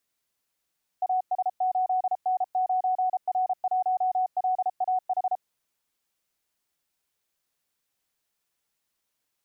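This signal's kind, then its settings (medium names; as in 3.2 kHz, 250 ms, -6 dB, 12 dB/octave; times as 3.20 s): Morse "AS8N9R1LAH" 33 wpm 742 Hz -21.5 dBFS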